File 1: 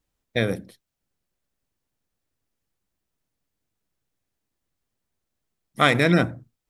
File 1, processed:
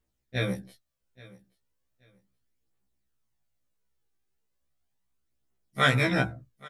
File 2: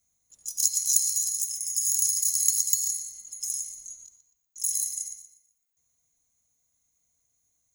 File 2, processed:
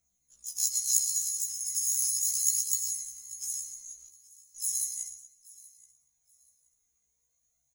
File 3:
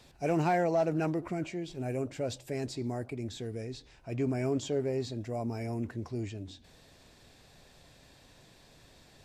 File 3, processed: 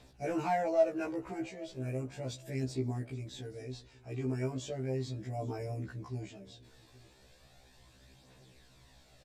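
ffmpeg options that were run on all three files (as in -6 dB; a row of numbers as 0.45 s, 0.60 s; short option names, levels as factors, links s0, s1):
-af "aphaser=in_gain=1:out_gain=1:delay=2.6:decay=0.42:speed=0.36:type=triangular,aecho=1:1:827|1654:0.0841|0.0202,afftfilt=real='re*1.73*eq(mod(b,3),0)':imag='im*1.73*eq(mod(b,3),0)':win_size=2048:overlap=0.75,volume=0.794"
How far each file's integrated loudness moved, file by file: -5.0 LU, -4.0 LU, -3.0 LU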